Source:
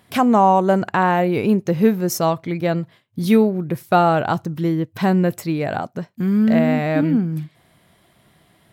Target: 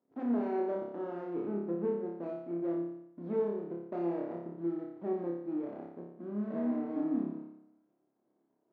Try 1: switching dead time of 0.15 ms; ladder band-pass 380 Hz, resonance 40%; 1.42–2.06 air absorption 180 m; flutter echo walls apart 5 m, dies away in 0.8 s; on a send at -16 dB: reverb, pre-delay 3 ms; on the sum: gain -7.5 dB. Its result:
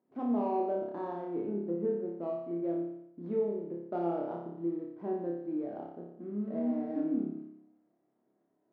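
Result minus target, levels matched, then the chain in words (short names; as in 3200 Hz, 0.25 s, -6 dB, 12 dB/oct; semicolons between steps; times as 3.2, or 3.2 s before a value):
switching dead time: distortion -9 dB
switching dead time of 0.44 ms; ladder band-pass 380 Hz, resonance 40%; 1.42–2.06 air absorption 180 m; flutter echo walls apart 5 m, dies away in 0.8 s; on a send at -16 dB: reverb, pre-delay 3 ms; on the sum: gain -7.5 dB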